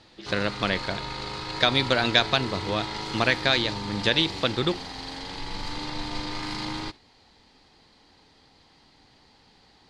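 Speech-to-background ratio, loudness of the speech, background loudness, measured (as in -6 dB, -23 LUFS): 8.5 dB, -25.0 LUFS, -33.5 LUFS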